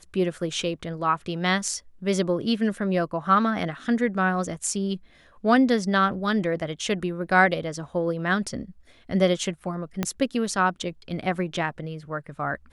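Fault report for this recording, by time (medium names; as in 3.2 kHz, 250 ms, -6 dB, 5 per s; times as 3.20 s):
10.03 s: pop -10 dBFS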